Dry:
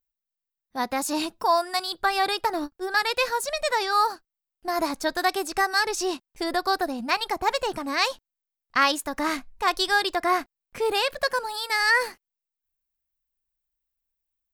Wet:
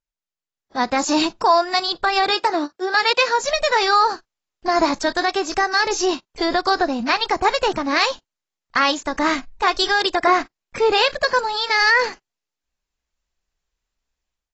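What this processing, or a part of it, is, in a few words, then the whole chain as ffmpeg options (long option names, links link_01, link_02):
low-bitrate web radio: -filter_complex "[0:a]asettb=1/sr,asplit=3[link_01][link_02][link_03];[link_01]atrim=end=2.304[link_04];[link_02]atrim=start=2.3:end=3.39,asetpts=PTS-STARTPTS,afade=type=in:duration=0.004:curve=qsin,afade=type=out:start_time=1.086:duration=0.004:curve=qsin,highpass=230[link_05];[link_03]atrim=start=3.386[link_06];[link_04][link_05]acrossfade=duration=0.004:curve1=hsin:curve2=qsin[link_07];[link_07][link_06]acrossfade=duration=0.004:curve1=qsin:curve2=hsin,dynaudnorm=framelen=510:gausssize=3:maxgain=11dB,alimiter=limit=-7dB:level=0:latency=1:release=79" -ar 22050 -c:a aac -b:a 24k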